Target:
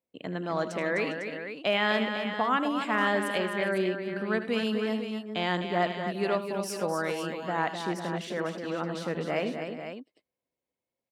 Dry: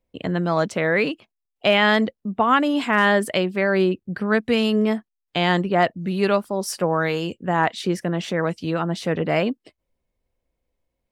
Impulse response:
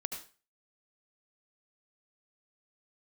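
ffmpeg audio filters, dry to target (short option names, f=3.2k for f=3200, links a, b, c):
-af "highpass=180,aecho=1:1:78|100|255|405|502:0.224|0.126|0.422|0.141|0.335,volume=-9dB"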